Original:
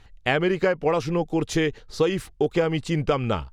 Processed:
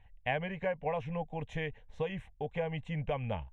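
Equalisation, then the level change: Bessel low-pass 2600 Hz, order 2; fixed phaser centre 1300 Hz, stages 6; -7.5 dB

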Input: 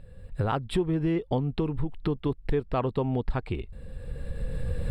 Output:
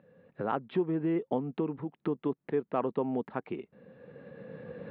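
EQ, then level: HPF 190 Hz 24 dB/oct; LPF 2400 Hz 12 dB/oct; air absorption 210 m; -1.5 dB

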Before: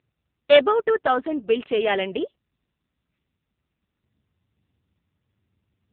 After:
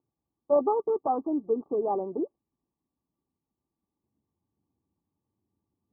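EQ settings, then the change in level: rippled Chebyshev low-pass 1200 Hz, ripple 9 dB; low shelf 200 Hz -6.5 dB; +1.0 dB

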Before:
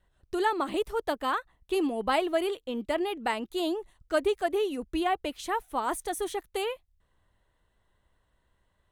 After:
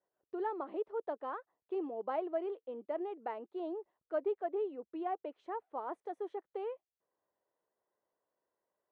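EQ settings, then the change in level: ladder band-pass 580 Hz, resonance 25%; +2.5 dB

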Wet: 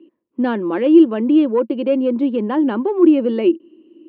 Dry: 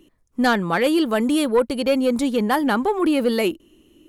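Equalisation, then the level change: speaker cabinet 180–3300 Hz, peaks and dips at 220 Hz +7 dB, 340 Hz +10 dB, 550 Hz +8 dB, 1000 Hz +9 dB, 1600 Hz +3 dB, 2800 Hz +9 dB; bell 320 Hz +13.5 dB 1.3 oct; -12.5 dB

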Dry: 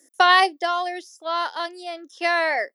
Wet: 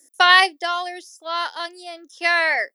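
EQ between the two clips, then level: high shelf 5200 Hz +10 dB; dynamic EQ 2200 Hz, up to +8 dB, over -30 dBFS, Q 0.71; -3.5 dB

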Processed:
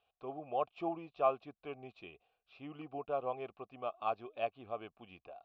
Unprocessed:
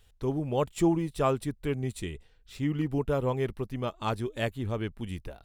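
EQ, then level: vowel filter a; steep low-pass 5100 Hz; +4.0 dB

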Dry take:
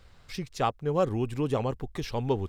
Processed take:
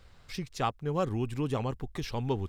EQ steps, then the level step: dynamic EQ 530 Hz, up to -5 dB, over -40 dBFS, Q 1.2; -1.0 dB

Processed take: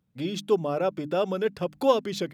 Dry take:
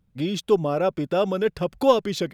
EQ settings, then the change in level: HPF 100 Hz; notches 50/100/150/200/250/300 Hz; -3.5 dB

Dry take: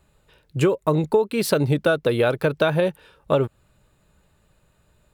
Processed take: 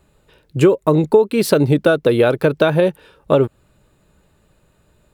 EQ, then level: bell 320 Hz +5 dB 1.5 oct; +3.0 dB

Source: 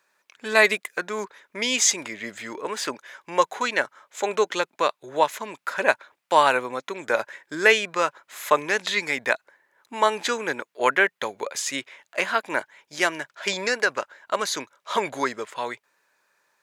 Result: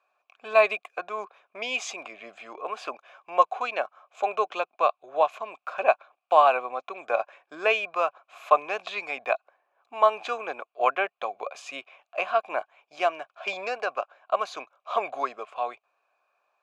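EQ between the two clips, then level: vowel filter a; +8.5 dB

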